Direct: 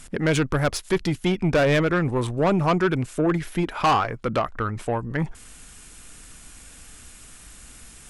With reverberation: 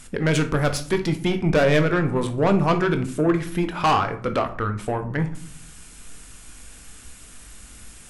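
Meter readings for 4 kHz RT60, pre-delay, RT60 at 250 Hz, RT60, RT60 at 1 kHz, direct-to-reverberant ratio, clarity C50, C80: 0.30 s, 18 ms, 1.1 s, 0.55 s, 0.50 s, 7.0 dB, 12.0 dB, 17.5 dB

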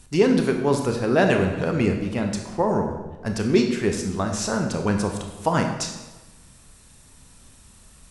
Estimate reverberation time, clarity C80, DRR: 1.2 s, 8.0 dB, 3.5 dB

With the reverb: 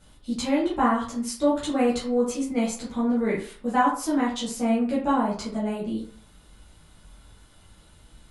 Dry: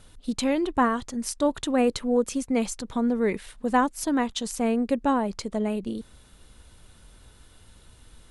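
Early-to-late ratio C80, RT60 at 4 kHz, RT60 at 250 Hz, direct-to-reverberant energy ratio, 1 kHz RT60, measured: 10.0 dB, 0.30 s, 0.40 s, -8.0 dB, 0.45 s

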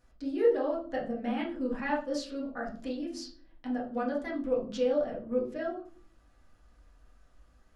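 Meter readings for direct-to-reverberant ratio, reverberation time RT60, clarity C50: -5.5 dB, 0.45 s, 7.0 dB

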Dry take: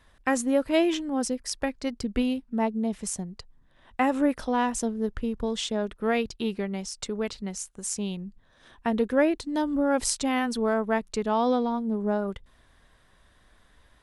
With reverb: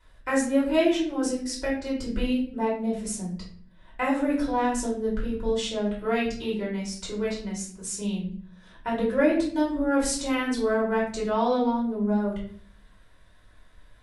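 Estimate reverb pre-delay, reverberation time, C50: 3 ms, 0.55 s, 5.5 dB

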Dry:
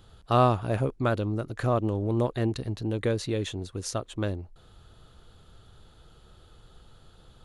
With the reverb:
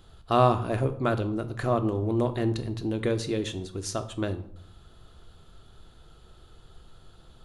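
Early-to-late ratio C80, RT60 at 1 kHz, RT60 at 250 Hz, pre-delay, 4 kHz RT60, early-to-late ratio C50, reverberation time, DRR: 17.0 dB, 0.65 s, 0.80 s, 3 ms, 0.45 s, 14.0 dB, 0.65 s, 8.0 dB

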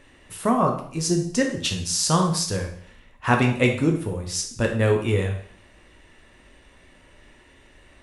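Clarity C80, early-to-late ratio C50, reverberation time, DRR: 11.0 dB, 7.0 dB, 0.60 s, 2.0 dB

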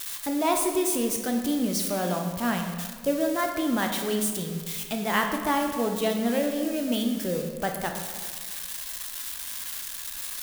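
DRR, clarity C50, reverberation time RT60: 3.0 dB, 5.0 dB, 1.7 s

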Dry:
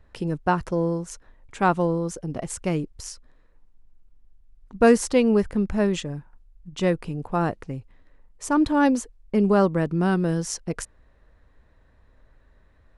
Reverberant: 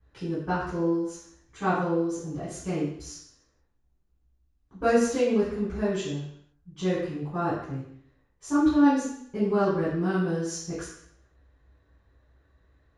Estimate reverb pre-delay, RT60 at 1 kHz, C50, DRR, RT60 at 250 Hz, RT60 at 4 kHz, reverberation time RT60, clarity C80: 3 ms, 0.70 s, 1.5 dB, -15.0 dB, 0.65 s, 0.70 s, 0.65 s, 5.0 dB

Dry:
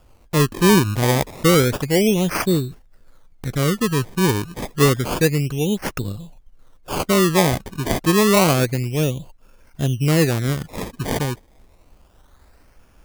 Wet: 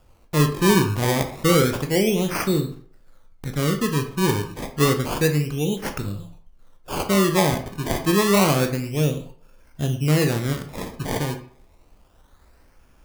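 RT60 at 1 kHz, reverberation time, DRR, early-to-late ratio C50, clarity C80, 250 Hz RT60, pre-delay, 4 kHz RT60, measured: 0.50 s, 0.50 s, 5.5 dB, 10.5 dB, 14.0 dB, 0.50 s, 16 ms, 0.35 s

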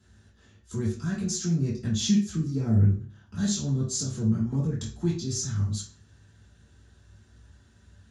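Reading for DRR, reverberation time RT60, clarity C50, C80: -6.0 dB, 0.45 s, 6.0 dB, 10.5 dB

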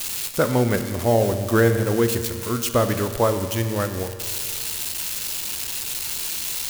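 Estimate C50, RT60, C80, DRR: 9.0 dB, 2.1 s, 10.0 dB, 8.0 dB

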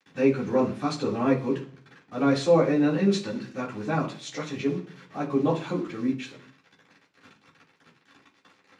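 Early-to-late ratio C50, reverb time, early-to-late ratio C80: 11.0 dB, 0.50 s, 16.0 dB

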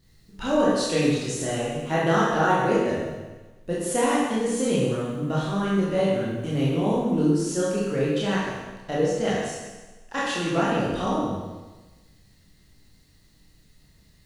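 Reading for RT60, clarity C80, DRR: 1.2 s, 1.5 dB, -7.5 dB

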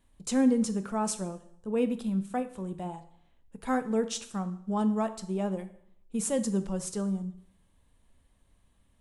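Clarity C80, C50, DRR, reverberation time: 17.5 dB, 14.0 dB, 10.0 dB, 0.65 s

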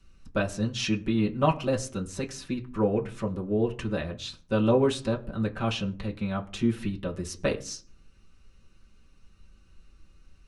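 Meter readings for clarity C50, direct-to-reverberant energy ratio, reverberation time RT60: 17.5 dB, -4.0 dB, no single decay rate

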